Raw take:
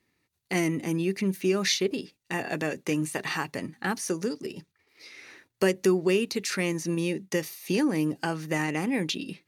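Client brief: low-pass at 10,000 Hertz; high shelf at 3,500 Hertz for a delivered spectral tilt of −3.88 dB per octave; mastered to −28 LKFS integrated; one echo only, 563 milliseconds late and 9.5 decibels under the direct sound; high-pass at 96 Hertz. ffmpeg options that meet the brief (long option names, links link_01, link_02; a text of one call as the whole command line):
ffmpeg -i in.wav -af "highpass=96,lowpass=10000,highshelf=frequency=3500:gain=5,aecho=1:1:563:0.335,volume=-0.5dB" out.wav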